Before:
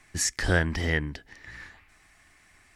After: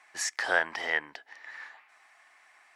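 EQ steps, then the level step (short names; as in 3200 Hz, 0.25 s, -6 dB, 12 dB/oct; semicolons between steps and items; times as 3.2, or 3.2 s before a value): resonant high-pass 790 Hz, resonance Q 1.7; high shelf 5800 Hz -10.5 dB; 0.0 dB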